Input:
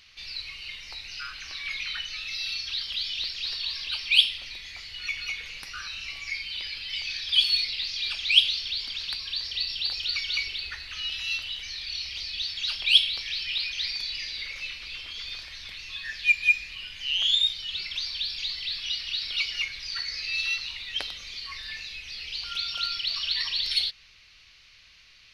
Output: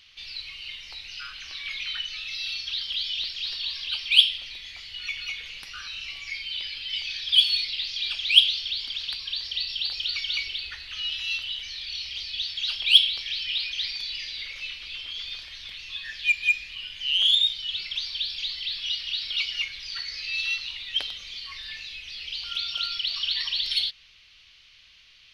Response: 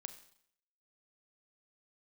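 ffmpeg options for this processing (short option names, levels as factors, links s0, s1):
-filter_complex "[0:a]equalizer=f=3200:t=o:w=0.44:g=8,asplit=2[s0][s1];[s1]asoftclip=type=hard:threshold=0.211,volume=0.335[s2];[s0][s2]amix=inputs=2:normalize=0,volume=0.531"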